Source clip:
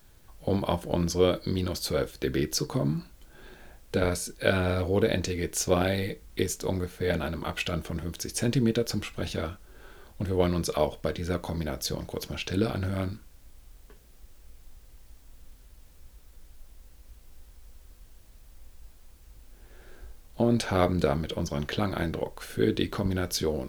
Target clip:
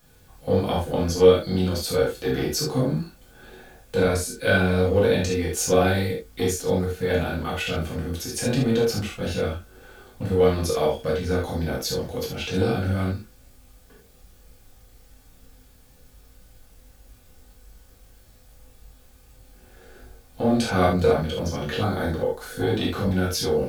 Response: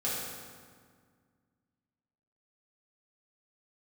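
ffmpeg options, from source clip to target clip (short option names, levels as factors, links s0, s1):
-filter_complex "[0:a]asettb=1/sr,asplit=3[s0][s1][s2];[s0]atrim=end=21.784[s3];[s1]atrim=start=21.78:end=22.64,asetpts=PTS-STARTPTS,afade=t=in:d=0.004:c=qsin,afade=t=out:st=0.856:d=0.004:c=qsin,equalizer=f=2600:w=3.8:g=-11[s4];[s2]atrim=start=22.636[s5];[s3][s4]acrossfade=d=0.004:c1=hsin:c2=qsin[s6];[s6][s5]acrossfade=d=0.004:c1=qsin:c2=hsin,acrossover=split=510|2300[s7][s8][s9];[s7]aeval=exprs='clip(val(0),-1,0.0501)':c=same[s10];[s10][s8][s9]amix=inputs=3:normalize=0[s11];[1:a]atrim=start_sample=2205,atrim=end_sample=3969[s12];[s11][s12]afir=irnorm=-1:irlink=0"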